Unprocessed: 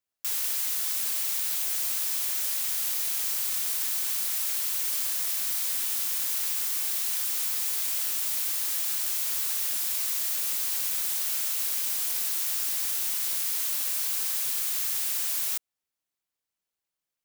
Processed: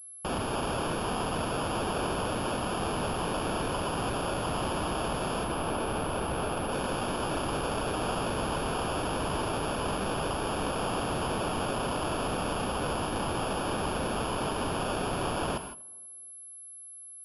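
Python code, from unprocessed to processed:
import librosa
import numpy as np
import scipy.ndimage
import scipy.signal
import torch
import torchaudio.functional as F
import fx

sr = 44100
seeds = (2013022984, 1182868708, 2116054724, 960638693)

p1 = fx.peak_eq(x, sr, hz=3000.0, db=3.0, octaves=0.77)
p2 = fx.sample_hold(p1, sr, seeds[0], rate_hz=2000.0, jitter_pct=0)
p3 = 10.0 ** (-35.5 / 20.0) * (np.abs((p2 / 10.0 ** (-35.5 / 20.0) + 3.0) % 4.0 - 2.0) - 1.0)
p4 = fx.air_absorb(p3, sr, metres=99.0, at=(5.44, 6.72))
p5 = p4 + fx.echo_tape(p4, sr, ms=244, feedback_pct=43, wet_db=-23.5, lp_hz=1400.0, drive_db=36.0, wow_cents=22, dry=0)
p6 = fx.rev_gated(p5, sr, seeds[1], gate_ms=180, shape='rising', drr_db=8.5)
p7 = fx.pwm(p6, sr, carrier_hz=11000.0)
y = p7 * 10.0 ** (9.0 / 20.0)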